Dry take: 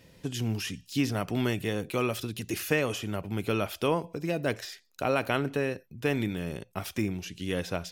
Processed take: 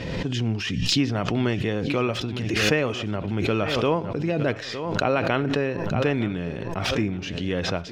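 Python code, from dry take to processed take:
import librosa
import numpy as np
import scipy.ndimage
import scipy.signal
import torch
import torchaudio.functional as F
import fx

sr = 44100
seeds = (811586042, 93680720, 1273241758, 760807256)

p1 = fx.air_absorb(x, sr, metres=160.0)
p2 = p1 + fx.echo_feedback(p1, sr, ms=911, feedback_pct=29, wet_db=-16.5, dry=0)
p3 = fx.pre_swell(p2, sr, db_per_s=30.0)
y = p3 * 10.0 ** (4.5 / 20.0)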